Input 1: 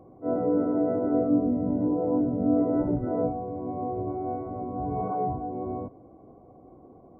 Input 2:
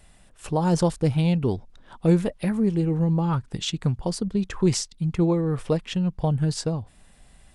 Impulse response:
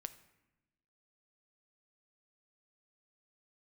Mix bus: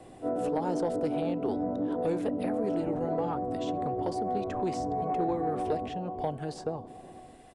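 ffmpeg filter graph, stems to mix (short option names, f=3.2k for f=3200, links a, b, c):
-filter_complex "[0:a]acompressor=threshold=-26dB:ratio=6,volume=0dB,asplit=2[a][b];[b]volume=-7.5dB[c];[1:a]bass=f=250:g=-12,treble=f=4k:g=-3,volume=-3.5dB,asplit=2[d][e];[e]volume=-7.5dB[f];[2:a]atrim=start_sample=2205[g];[f][g]afir=irnorm=-1:irlink=0[h];[c]aecho=0:1:489|978|1467|1956|2445|2934:1|0.42|0.176|0.0741|0.0311|0.0131[i];[a][d][h][i]amix=inputs=4:normalize=0,acrossover=split=260|600|1200[j][k][l][m];[j]acompressor=threshold=-40dB:ratio=4[n];[k]acompressor=threshold=-28dB:ratio=4[o];[l]acompressor=threshold=-40dB:ratio=4[p];[m]acompressor=threshold=-50dB:ratio=4[q];[n][o][p][q]amix=inputs=4:normalize=0,equalizer=f=760:w=3:g=5,asoftclip=type=tanh:threshold=-18dB"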